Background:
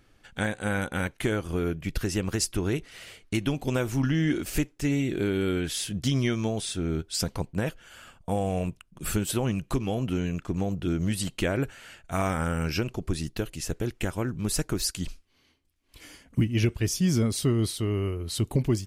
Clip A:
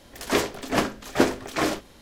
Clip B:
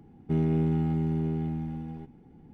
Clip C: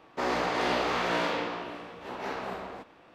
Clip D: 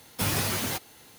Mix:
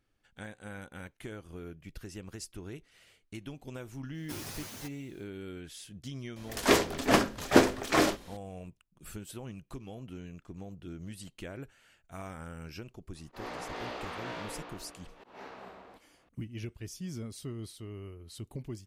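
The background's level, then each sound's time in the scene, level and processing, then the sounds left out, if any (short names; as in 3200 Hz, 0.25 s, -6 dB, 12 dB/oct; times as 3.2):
background -16 dB
4.1 add D -16 dB, fades 0.10 s + bell 5900 Hz +4 dB 0.74 oct
6.36 add A -0.5 dB
13.15 add C -12 dB + auto swell 0.129 s
not used: B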